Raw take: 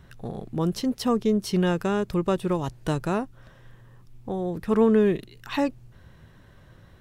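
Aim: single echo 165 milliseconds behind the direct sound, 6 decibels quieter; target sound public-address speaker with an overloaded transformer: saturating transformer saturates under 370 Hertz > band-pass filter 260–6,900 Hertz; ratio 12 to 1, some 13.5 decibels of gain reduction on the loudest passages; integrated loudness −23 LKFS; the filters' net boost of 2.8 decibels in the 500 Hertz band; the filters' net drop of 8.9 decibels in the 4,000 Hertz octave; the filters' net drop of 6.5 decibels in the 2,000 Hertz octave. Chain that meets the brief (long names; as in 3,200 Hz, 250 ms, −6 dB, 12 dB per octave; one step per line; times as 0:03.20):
parametric band 500 Hz +4.5 dB
parametric band 2,000 Hz −7.5 dB
parametric band 4,000 Hz −9 dB
downward compressor 12 to 1, threshold −26 dBFS
single-tap delay 165 ms −6 dB
saturating transformer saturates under 370 Hz
band-pass filter 260–6,900 Hz
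level +12 dB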